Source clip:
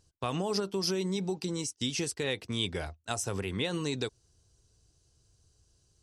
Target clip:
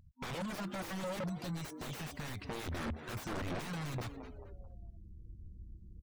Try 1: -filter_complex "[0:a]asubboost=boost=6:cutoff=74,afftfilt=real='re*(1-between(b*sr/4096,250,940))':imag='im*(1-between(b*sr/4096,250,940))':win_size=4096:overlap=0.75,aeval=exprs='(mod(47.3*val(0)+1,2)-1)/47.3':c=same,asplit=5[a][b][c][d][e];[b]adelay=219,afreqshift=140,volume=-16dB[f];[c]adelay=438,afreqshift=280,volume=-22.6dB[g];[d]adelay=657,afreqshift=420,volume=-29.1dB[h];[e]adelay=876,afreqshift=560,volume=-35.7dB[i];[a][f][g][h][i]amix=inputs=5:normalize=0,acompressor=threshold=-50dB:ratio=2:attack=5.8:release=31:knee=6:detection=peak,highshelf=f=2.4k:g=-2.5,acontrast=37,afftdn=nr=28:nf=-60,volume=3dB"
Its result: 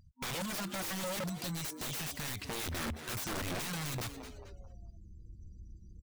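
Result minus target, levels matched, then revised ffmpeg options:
4000 Hz band +4.0 dB
-filter_complex "[0:a]asubboost=boost=6:cutoff=74,afftfilt=real='re*(1-between(b*sr/4096,250,940))':imag='im*(1-between(b*sr/4096,250,940))':win_size=4096:overlap=0.75,aeval=exprs='(mod(47.3*val(0)+1,2)-1)/47.3':c=same,asplit=5[a][b][c][d][e];[b]adelay=219,afreqshift=140,volume=-16dB[f];[c]adelay=438,afreqshift=280,volume=-22.6dB[g];[d]adelay=657,afreqshift=420,volume=-29.1dB[h];[e]adelay=876,afreqshift=560,volume=-35.7dB[i];[a][f][g][h][i]amix=inputs=5:normalize=0,acompressor=threshold=-50dB:ratio=2:attack=5.8:release=31:knee=6:detection=peak,highshelf=f=2.4k:g=-12,acontrast=37,afftdn=nr=28:nf=-60,volume=3dB"

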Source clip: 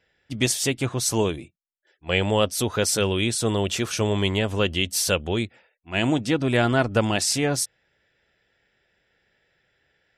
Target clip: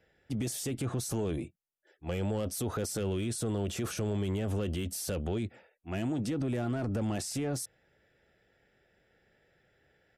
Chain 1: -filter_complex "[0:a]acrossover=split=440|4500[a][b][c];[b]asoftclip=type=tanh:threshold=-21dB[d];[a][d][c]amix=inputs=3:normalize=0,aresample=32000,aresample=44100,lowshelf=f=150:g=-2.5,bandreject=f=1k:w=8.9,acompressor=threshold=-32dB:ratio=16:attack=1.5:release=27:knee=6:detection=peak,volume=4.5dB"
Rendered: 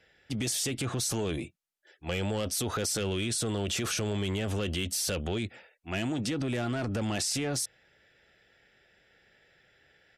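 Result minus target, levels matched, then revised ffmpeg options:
4000 Hz band +7.0 dB
-filter_complex "[0:a]acrossover=split=440|4500[a][b][c];[b]asoftclip=type=tanh:threshold=-21dB[d];[a][d][c]amix=inputs=3:normalize=0,aresample=32000,aresample=44100,lowshelf=f=150:g=-2.5,bandreject=f=1k:w=8.9,acompressor=threshold=-32dB:ratio=16:attack=1.5:release=27:knee=6:detection=peak,equalizer=f=3.7k:w=0.37:g=-10.5,volume=4.5dB"

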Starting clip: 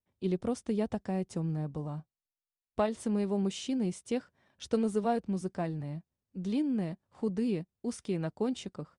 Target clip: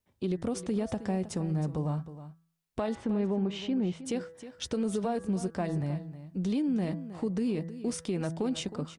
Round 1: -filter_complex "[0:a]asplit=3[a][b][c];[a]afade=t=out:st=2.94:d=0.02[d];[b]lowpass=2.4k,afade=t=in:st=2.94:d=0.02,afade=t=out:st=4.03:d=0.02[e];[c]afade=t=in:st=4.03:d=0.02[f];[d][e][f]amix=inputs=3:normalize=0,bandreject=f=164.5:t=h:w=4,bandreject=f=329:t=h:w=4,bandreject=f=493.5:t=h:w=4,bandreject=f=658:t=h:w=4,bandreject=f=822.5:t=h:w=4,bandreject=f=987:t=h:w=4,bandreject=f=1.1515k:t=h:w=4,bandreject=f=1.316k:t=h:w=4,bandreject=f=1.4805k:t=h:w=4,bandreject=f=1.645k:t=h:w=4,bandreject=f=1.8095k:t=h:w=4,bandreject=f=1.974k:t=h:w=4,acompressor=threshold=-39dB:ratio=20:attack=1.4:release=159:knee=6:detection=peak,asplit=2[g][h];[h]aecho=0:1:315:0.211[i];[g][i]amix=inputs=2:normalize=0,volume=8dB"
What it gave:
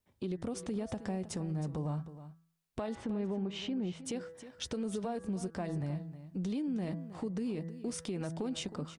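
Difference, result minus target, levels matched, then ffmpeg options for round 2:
compressor: peak gain reduction +6 dB
-filter_complex "[0:a]asplit=3[a][b][c];[a]afade=t=out:st=2.94:d=0.02[d];[b]lowpass=2.4k,afade=t=in:st=2.94:d=0.02,afade=t=out:st=4.03:d=0.02[e];[c]afade=t=in:st=4.03:d=0.02[f];[d][e][f]amix=inputs=3:normalize=0,bandreject=f=164.5:t=h:w=4,bandreject=f=329:t=h:w=4,bandreject=f=493.5:t=h:w=4,bandreject=f=658:t=h:w=4,bandreject=f=822.5:t=h:w=4,bandreject=f=987:t=h:w=4,bandreject=f=1.1515k:t=h:w=4,bandreject=f=1.316k:t=h:w=4,bandreject=f=1.4805k:t=h:w=4,bandreject=f=1.645k:t=h:w=4,bandreject=f=1.8095k:t=h:w=4,bandreject=f=1.974k:t=h:w=4,acompressor=threshold=-32.5dB:ratio=20:attack=1.4:release=159:knee=6:detection=peak,asplit=2[g][h];[h]aecho=0:1:315:0.211[i];[g][i]amix=inputs=2:normalize=0,volume=8dB"

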